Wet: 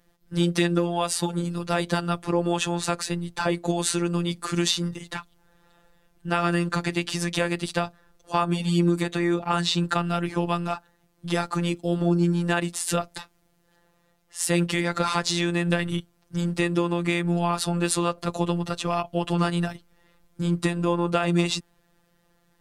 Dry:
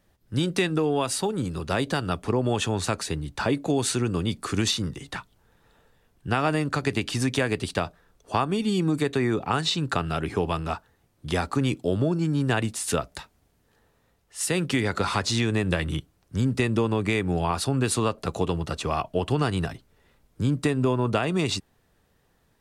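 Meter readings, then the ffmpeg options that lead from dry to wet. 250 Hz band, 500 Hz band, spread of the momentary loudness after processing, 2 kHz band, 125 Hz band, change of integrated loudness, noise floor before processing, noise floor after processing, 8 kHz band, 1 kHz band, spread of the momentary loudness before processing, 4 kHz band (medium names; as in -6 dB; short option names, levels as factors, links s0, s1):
+1.5 dB, -0.5 dB, 7 LU, +0.5 dB, 0.0 dB, +0.5 dB, -67 dBFS, -66 dBFS, +1.0 dB, +1.5 dB, 7 LU, +1.0 dB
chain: -af "afftfilt=real='hypot(re,im)*cos(PI*b)':imag='0':win_size=1024:overlap=0.75,volume=1.68"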